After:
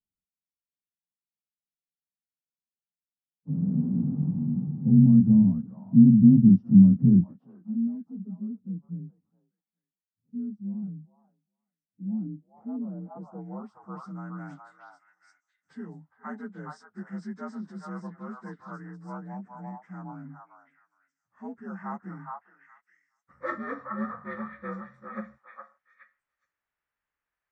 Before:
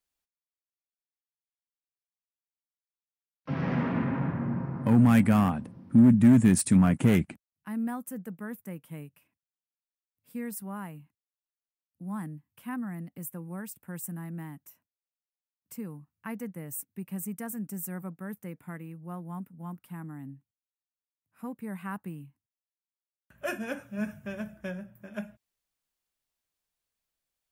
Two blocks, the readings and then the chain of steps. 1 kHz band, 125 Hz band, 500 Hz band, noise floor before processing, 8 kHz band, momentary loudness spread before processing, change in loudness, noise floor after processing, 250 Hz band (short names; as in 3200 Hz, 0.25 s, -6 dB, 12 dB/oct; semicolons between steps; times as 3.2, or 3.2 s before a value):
-2.5 dB, +3.5 dB, -5.5 dB, under -85 dBFS, under -25 dB, 22 LU, +5.5 dB, under -85 dBFS, +4.0 dB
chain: inharmonic rescaling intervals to 86%; high shelf 7400 Hz +4.5 dB; delay with a stepping band-pass 0.417 s, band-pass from 1000 Hz, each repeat 1.4 oct, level -0.5 dB; low-pass sweep 200 Hz -> 1700 Hz, 11.77–14.42